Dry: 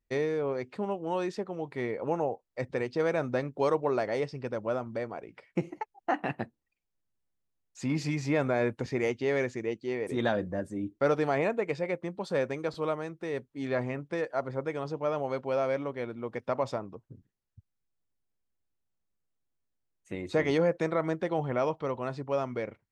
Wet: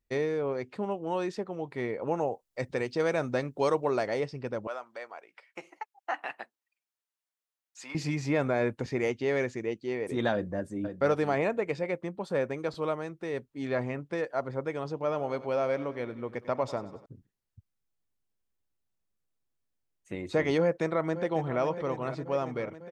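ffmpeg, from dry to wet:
-filter_complex "[0:a]asettb=1/sr,asplit=3[s0][s1][s2];[s0]atrim=end=2.174[s3];[s1]atrim=start=2.17:end=4.14,asetpts=PTS-STARTPTS,afade=t=in:d=0.004:c=qsin,afade=t=out:st=1.966:d=0.004:c=qsin,highshelf=f=3800:g=8[s4];[s2]atrim=start=4.136[s5];[s3][s4]acrossfade=d=0.004:c1=hsin:c2=qsin[s6];[s6][s5]acrossfade=d=0.004:c1=qsin:c2=hsin,asettb=1/sr,asplit=3[s7][s8][s9];[s7]atrim=end=4.674[s10];[s8]atrim=start=4.67:end=7.95,asetpts=PTS-STARTPTS,afade=t=in:d=0.004:c=qsin,afade=t=out:st=3.276:d=0.004:c=qsin,highpass=850[s11];[s9]atrim=start=7.946[s12];[s10][s11]acrossfade=d=0.004:c1=hsin:c2=qsin[s13];[s13][s12]acrossfade=d=0.004:c1=qsin:c2=hsin,asplit=2[s14][s15];[s15]afade=t=in:st=10.33:d=0.01,afade=t=out:st=10.83:d=0.01,aecho=0:1:510|1020:0.375837|0.0563756[s16];[s14][s16]amix=inputs=2:normalize=0,asettb=1/sr,asplit=3[s17][s18][s19];[s17]atrim=end=12.094[s20];[s18]atrim=start=12.09:end=12.58,asetpts=PTS-STARTPTS,afade=t=in:d=0.004:c=qsin,afade=t=out:st=0.486:d=0.004:c=qsin,equalizer=f=4800:t=o:w=1.4:g=-5.5[s21];[s19]atrim=start=12.576[s22];[s20][s21]acrossfade=d=0.004:c1=hsin:c2=qsin[s23];[s23][s22]acrossfade=d=0.004:c1=qsin:c2=hsin,asettb=1/sr,asplit=3[s24][s25][s26];[s24]atrim=end=14.914[s27];[s25]atrim=start=14.91:end=17.06,asetpts=PTS-STARTPTS,afade=t=in:d=0.004:c=qsin,afade=t=out:st=2.146:d=0.004:c=qsin,aecho=1:1:95|190|285|380|475:0.158|0.0872|0.0479|0.0264|0.0145,atrim=end_sample=94815[s28];[s26]atrim=start=17.056[s29];[s27][s28]acrossfade=d=0.004:c1=hsin:c2=qsin[s30];[s30][s29]acrossfade=d=0.004:c1=qsin:c2=hsin,asplit=2[s31][s32];[s32]afade=t=in:st=20.6:d=0.01,afade=t=out:st=21.59:d=0.01,aecho=0:1:550|1100|1650|2200|2750|3300|3850|4400|4950|5500:0.266073|0.186251|0.130376|0.0912629|0.063884|0.0447188|0.0313032|0.0219122|0.0153386|0.010737[s33];[s31][s33]amix=inputs=2:normalize=0"

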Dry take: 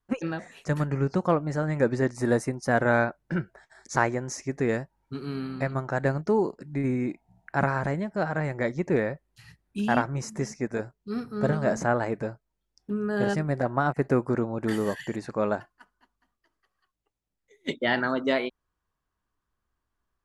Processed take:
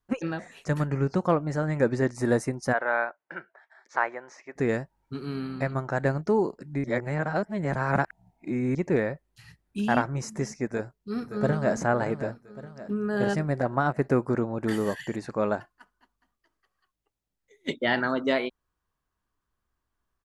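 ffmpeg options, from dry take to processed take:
-filter_complex "[0:a]asplit=3[s0][s1][s2];[s0]afade=t=out:st=2.72:d=0.02[s3];[s1]highpass=690,lowpass=2400,afade=t=in:st=2.72:d=0.02,afade=t=out:st=4.55:d=0.02[s4];[s2]afade=t=in:st=4.55:d=0.02[s5];[s3][s4][s5]amix=inputs=3:normalize=0,asplit=2[s6][s7];[s7]afade=t=in:st=10.65:d=0.01,afade=t=out:st=11.74:d=0.01,aecho=0:1:570|1140|1710|2280|2850:0.266073|0.133036|0.0665181|0.0332591|0.0166295[s8];[s6][s8]amix=inputs=2:normalize=0,asplit=3[s9][s10][s11];[s9]atrim=end=6.842[s12];[s10]atrim=start=6.838:end=8.752,asetpts=PTS-STARTPTS,areverse[s13];[s11]atrim=start=8.748[s14];[s12][s13]acrossfade=d=0.004:c1=hsin:c2=hsin[s15];[s15][s14]acrossfade=d=0.004:c1=hsin:c2=hsin"

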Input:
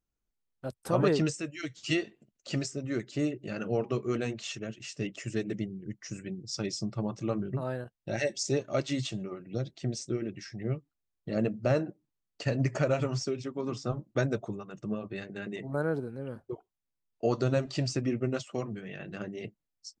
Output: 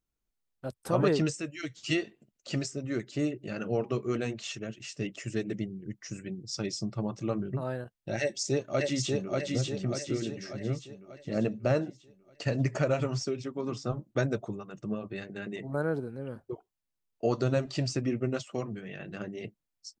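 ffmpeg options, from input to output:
-filter_complex "[0:a]asplit=2[s0][s1];[s1]afade=t=in:st=8.21:d=0.01,afade=t=out:st=9.36:d=0.01,aecho=0:1:590|1180|1770|2360|2950|3540|4130:0.794328|0.397164|0.198582|0.099291|0.0496455|0.0248228|0.0124114[s2];[s0][s2]amix=inputs=2:normalize=0"

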